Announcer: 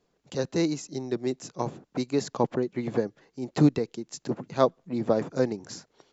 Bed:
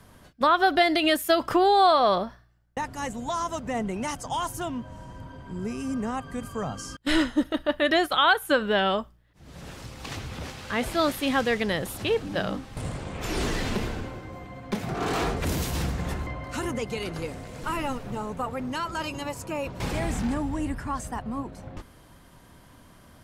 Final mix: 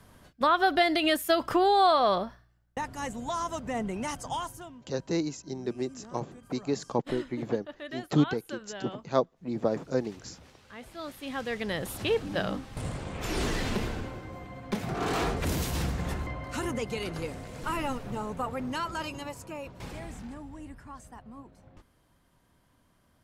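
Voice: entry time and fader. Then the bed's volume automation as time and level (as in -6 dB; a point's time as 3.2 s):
4.55 s, -3.5 dB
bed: 4.33 s -3 dB
4.81 s -18 dB
10.9 s -18 dB
11.92 s -2 dB
18.84 s -2 dB
20.26 s -14.5 dB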